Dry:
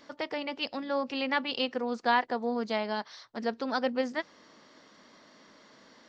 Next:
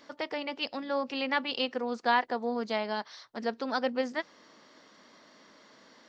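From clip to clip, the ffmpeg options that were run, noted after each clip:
ffmpeg -i in.wav -af "lowshelf=frequency=140:gain=-6.5" out.wav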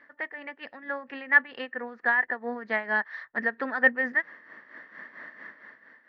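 ffmpeg -i in.wav -af "lowpass=frequency=1800:width_type=q:width=13,dynaudnorm=framelen=110:gausssize=13:maxgain=14.5dB,tremolo=f=4.4:d=0.66,volume=-6.5dB" out.wav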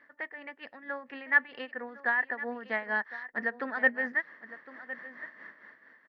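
ffmpeg -i in.wav -af "aecho=1:1:1059:0.168,volume=-4dB" out.wav

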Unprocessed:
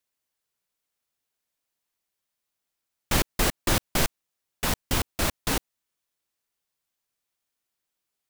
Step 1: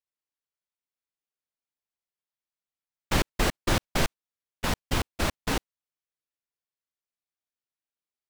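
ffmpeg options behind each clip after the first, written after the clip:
ffmpeg -i in.wav -af "agate=range=-12dB:threshold=-30dB:ratio=16:detection=peak,highshelf=frequency=7600:gain=-11.5" out.wav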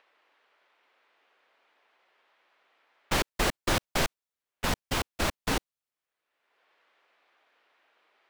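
ffmpeg -i in.wav -filter_complex "[0:a]acrossover=split=360|3000[link_01][link_02][link_03];[link_01]alimiter=limit=-22.5dB:level=0:latency=1:release=408[link_04];[link_02]acompressor=mode=upward:threshold=-42dB:ratio=2.5[link_05];[link_04][link_05][link_03]amix=inputs=3:normalize=0" out.wav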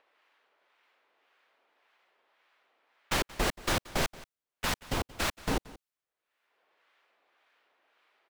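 ffmpeg -i in.wav -filter_complex "[0:a]acrossover=split=930[link_01][link_02];[link_01]aeval=exprs='val(0)*(1-0.5/2+0.5/2*cos(2*PI*1.8*n/s))':channel_layout=same[link_03];[link_02]aeval=exprs='val(0)*(1-0.5/2-0.5/2*cos(2*PI*1.8*n/s))':channel_layout=same[link_04];[link_03][link_04]amix=inputs=2:normalize=0,aecho=1:1:179:0.1" out.wav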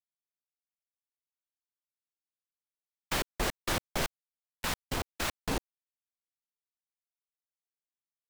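ffmpeg -i in.wav -af "acrusher=bits=4:mix=0:aa=0.5,volume=-2.5dB" out.wav

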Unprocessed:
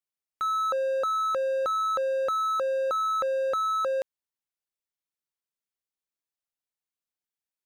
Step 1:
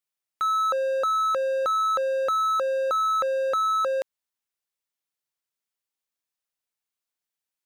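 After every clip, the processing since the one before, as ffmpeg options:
ffmpeg -i in.wav -af "lowshelf=frequency=490:gain=-5,volume=4dB" out.wav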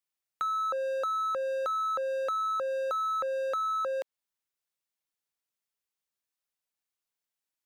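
ffmpeg -i in.wav -filter_complex "[0:a]acrossover=split=320|2000|4900[link_01][link_02][link_03][link_04];[link_01]acompressor=threshold=-55dB:ratio=4[link_05];[link_02]acompressor=threshold=-28dB:ratio=4[link_06];[link_03]acompressor=threshold=-48dB:ratio=4[link_07];[link_04]acompressor=threshold=-56dB:ratio=4[link_08];[link_05][link_06][link_07][link_08]amix=inputs=4:normalize=0,volume=-2dB" out.wav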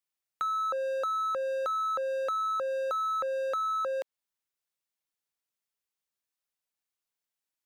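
ffmpeg -i in.wav -af anull out.wav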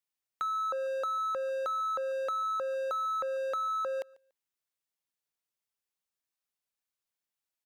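ffmpeg -i in.wav -af "aecho=1:1:144|288:0.0631|0.012,volume=-2dB" out.wav

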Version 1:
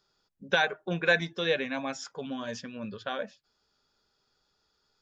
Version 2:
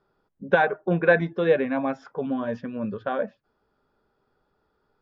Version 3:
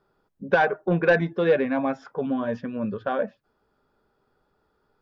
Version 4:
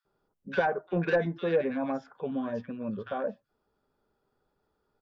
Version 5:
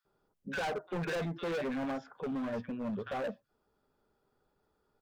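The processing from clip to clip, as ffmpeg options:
ffmpeg -i in.wav -af "lowpass=1400,equalizer=frequency=340:width=0.64:gain=3,volume=6.5dB" out.wav
ffmpeg -i in.wav -af "asoftclip=type=tanh:threshold=-11.5dB,volume=1.5dB" out.wav
ffmpeg -i in.wav -filter_complex "[0:a]acrossover=split=1500[link_01][link_02];[link_01]adelay=50[link_03];[link_03][link_02]amix=inputs=2:normalize=0,volume=-6dB" out.wav
ffmpeg -i in.wav -af "volume=32.5dB,asoftclip=hard,volume=-32.5dB" out.wav

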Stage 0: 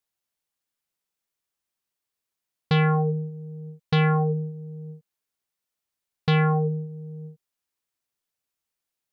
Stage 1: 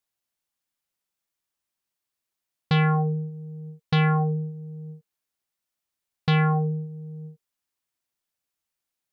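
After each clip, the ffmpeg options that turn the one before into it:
ffmpeg -i in.wav -af "bandreject=frequency=450:width=12" out.wav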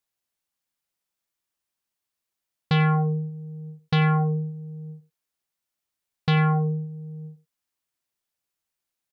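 ffmpeg -i in.wav -af "aecho=1:1:91:0.141" out.wav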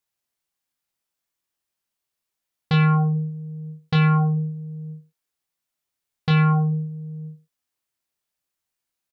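ffmpeg -i in.wav -filter_complex "[0:a]asplit=2[link_01][link_02];[link_02]adelay=25,volume=-5dB[link_03];[link_01][link_03]amix=inputs=2:normalize=0" out.wav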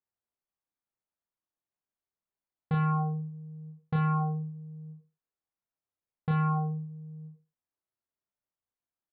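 ffmpeg -i in.wav -filter_complex "[0:a]lowpass=1300,asplit=2[link_01][link_02];[link_02]aecho=0:1:35|57:0.473|0.299[link_03];[link_01][link_03]amix=inputs=2:normalize=0,volume=-7.5dB" out.wav

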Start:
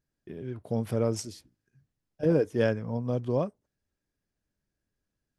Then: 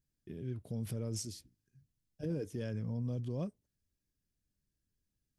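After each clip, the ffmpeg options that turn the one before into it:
ffmpeg -i in.wav -af "equalizer=frequency=930:width=0.44:gain=-14.5,alimiter=level_in=6.5dB:limit=-24dB:level=0:latency=1:release=22,volume=-6.5dB,volume=1dB" out.wav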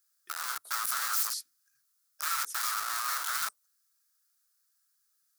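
ffmpeg -i in.wav -af "aeval=exprs='(mod(94.4*val(0)+1,2)-1)/94.4':channel_layout=same,highpass=frequency=1300:width_type=q:width=6.5,aexciter=amount=1.7:drive=9.8:freq=4000,volume=3dB" out.wav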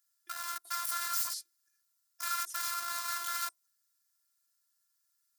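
ffmpeg -i in.wav -af "afftfilt=real='hypot(re,im)*cos(PI*b)':imag='0':win_size=512:overlap=0.75" out.wav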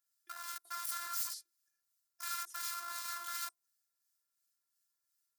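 ffmpeg -i in.wav -filter_complex "[0:a]acrossover=split=1700[link_01][link_02];[link_01]aeval=exprs='val(0)*(1-0.5/2+0.5/2*cos(2*PI*2.8*n/s))':channel_layout=same[link_03];[link_02]aeval=exprs='val(0)*(1-0.5/2-0.5/2*cos(2*PI*2.8*n/s))':channel_layout=same[link_04];[link_03][link_04]amix=inputs=2:normalize=0,volume=-3.5dB" out.wav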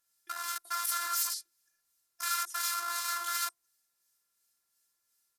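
ffmpeg -i in.wav -af "aresample=32000,aresample=44100,volume=8.5dB" out.wav

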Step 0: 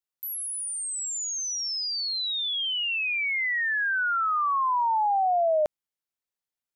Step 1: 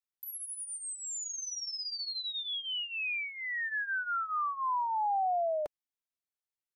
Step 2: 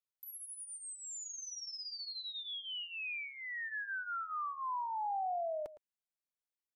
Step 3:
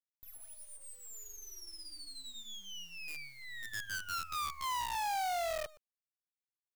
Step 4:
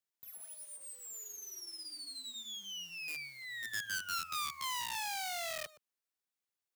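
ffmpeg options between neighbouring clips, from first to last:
ffmpeg -i in.wav -af "flanger=delay=0.7:depth=2.5:regen=-24:speed=0.41:shape=triangular,volume=-4.5dB" out.wav
ffmpeg -i in.wav -filter_complex "[0:a]asplit=2[link_01][link_02];[link_02]adelay=110.8,volume=-15dB,highshelf=frequency=4000:gain=-2.49[link_03];[link_01][link_03]amix=inputs=2:normalize=0,volume=-6.5dB" out.wav
ffmpeg -i in.wav -af "acrusher=bits=7:dc=4:mix=0:aa=0.000001" out.wav
ffmpeg -i in.wav -filter_complex "[0:a]highpass=150,acrossover=split=260|1500[link_01][link_02][link_03];[link_02]acompressor=threshold=-49dB:ratio=6[link_04];[link_01][link_04][link_03]amix=inputs=3:normalize=0,volume=3dB" out.wav

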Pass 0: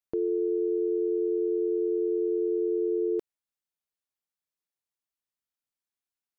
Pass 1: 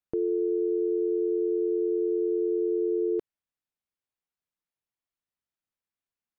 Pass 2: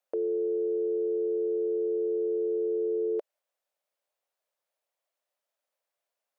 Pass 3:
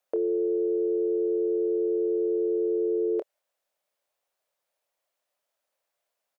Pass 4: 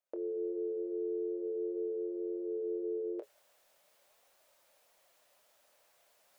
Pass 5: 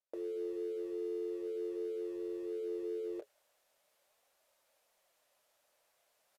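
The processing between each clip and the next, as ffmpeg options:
ffmpeg -i in.wav -af "bass=frequency=250:gain=4,treble=frequency=4000:gain=-9" out.wav
ffmpeg -i in.wav -af "alimiter=level_in=3dB:limit=-24dB:level=0:latency=1:release=30,volume=-3dB,highpass=frequency=580:width_type=q:width=4.9,volume=4.5dB" out.wav
ffmpeg -i in.wav -filter_complex "[0:a]asplit=2[link_01][link_02];[link_02]adelay=26,volume=-11.5dB[link_03];[link_01][link_03]amix=inputs=2:normalize=0,volume=4dB" out.wav
ffmpeg -i in.wav -af "areverse,acompressor=mode=upward:threshold=-38dB:ratio=2.5,areverse,flanger=delay=3.2:depth=5.4:regen=-50:speed=0.44:shape=sinusoidal,volume=-6.5dB" out.wav
ffmpeg -i in.wav -filter_complex "[0:a]asplit=2[link_01][link_02];[link_02]aeval=exprs='val(0)*gte(abs(val(0)),0.00708)':channel_layout=same,volume=-8dB[link_03];[link_01][link_03]amix=inputs=2:normalize=0,aresample=32000,aresample=44100,volume=-5.5dB" out.wav

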